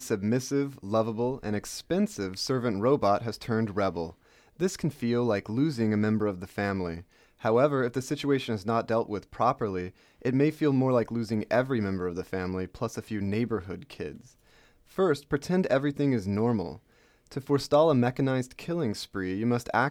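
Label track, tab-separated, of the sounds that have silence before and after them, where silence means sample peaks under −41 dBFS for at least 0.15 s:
4.600000	7.010000	sound
7.420000	9.890000	sound
10.220000	14.210000	sound
14.960000	16.770000	sound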